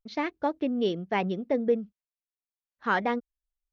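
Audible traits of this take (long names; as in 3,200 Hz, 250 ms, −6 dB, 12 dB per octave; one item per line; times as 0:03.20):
background noise floor −96 dBFS
spectral slope −4.0 dB per octave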